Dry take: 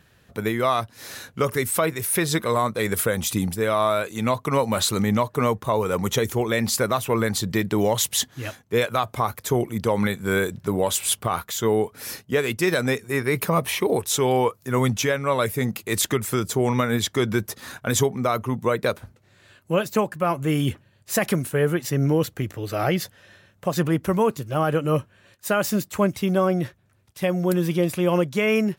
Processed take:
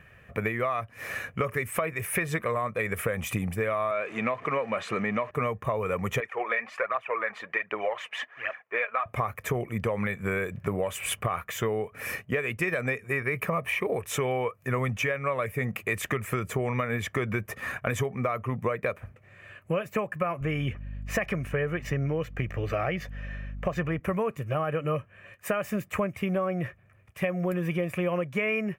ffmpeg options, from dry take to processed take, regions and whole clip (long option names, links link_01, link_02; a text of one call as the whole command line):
ffmpeg -i in.wav -filter_complex "[0:a]asettb=1/sr,asplit=3[link_01][link_02][link_03];[link_01]atrim=end=3.914[link_04];[link_02]atrim=start=3.91:end=5.31,asetpts=PTS-STARTPTS,afade=type=in:duration=0.004:curve=qsin,afade=type=out:start_time=1.396:duration=0.004:curve=qsin,aeval=exprs='val(0)+0.5*0.0237*sgn(val(0))':channel_layout=same,highpass=220,lowpass=4600[link_05];[link_03]atrim=start=5.306[link_06];[link_04][link_05]acrossfade=duration=0.004:curve1=hsin:curve2=qsin[link_07];[link_07][link_06]acrossfade=duration=0.004:curve1=qsin:curve2=hsin,asettb=1/sr,asplit=3[link_08][link_09][link_10];[link_08]atrim=end=6.204[link_11];[link_09]atrim=start=6.2:end=9.06,asetpts=PTS-STARTPTS,afade=type=in:duration=0.004:curve=qsin,afade=type=out:start_time=2.856:duration=0.004:curve=qsin,highpass=790,lowpass=2200,aphaser=in_gain=1:out_gain=1:delay=4.9:decay=0.52:speed=1.3:type=triangular[link_12];[link_10]atrim=start=9.056[link_13];[link_11][link_12]acrossfade=duration=0.004:curve1=hsin:curve2=qsin[link_14];[link_14][link_13]acrossfade=duration=0.004:curve1=qsin:curve2=hsin,asettb=1/sr,asplit=3[link_15][link_16][link_17];[link_15]atrim=end=20.414[link_18];[link_16]atrim=start=20.41:end=24,asetpts=PTS-STARTPTS,afade=type=in:duration=0.004:curve=qsin,afade=type=out:start_time=3.586:duration=0.004:curve=qsin,highpass=53,highshelf=frequency=7400:width_type=q:width=1.5:gain=-7,aeval=exprs='val(0)+0.0112*(sin(2*PI*50*n/s)+sin(2*PI*2*50*n/s)/2+sin(2*PI*3*50*n/s)/3+sin(2*PI*4*50*n/s)/4+sin(2*PI*5*50*n/s)/5)':channel_layout=same[link_19];[link_17]atrim=start=23.996[link_20];[link_18][link_19]acrossfade=duration=0.004:curve1=hsin:curve2=qsin[link_21];[link_21][link_20]acrossfade=duration=0.004:curve1=qsin:curve2=hsin,highshelf=frequency=3100:width_type=q:width=3:gain=-9.5,aecho=1:1:1.7:0.42,acompressor=threshold=-27dB:ratio=6,volume=1.5dB" out.wav